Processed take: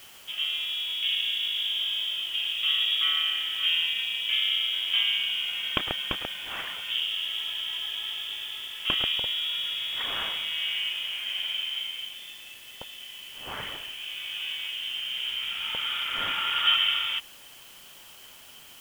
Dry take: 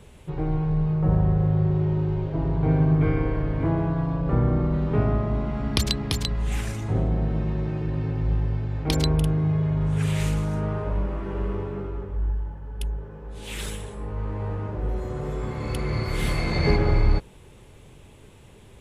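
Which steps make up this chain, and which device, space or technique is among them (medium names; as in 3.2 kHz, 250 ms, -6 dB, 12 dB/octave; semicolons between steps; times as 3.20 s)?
scrambled radio voice (band-pass 330–2800 Hz; frequency inversion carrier 3.5 kHz; white noise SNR 21 dB); 2.81–3.39 s: high-pass 190 Hz 12 dB/octave; trim +3.5 dB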